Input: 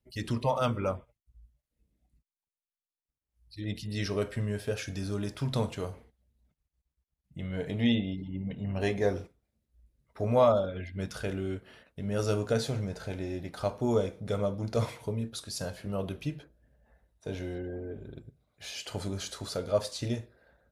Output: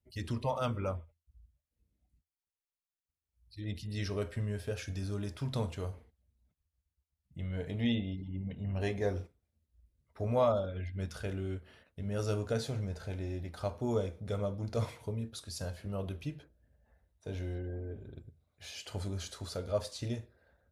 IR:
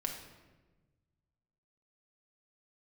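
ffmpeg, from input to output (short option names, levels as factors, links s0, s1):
-af "equalizer=f=82:w=4.1:g=14,volume=0.531"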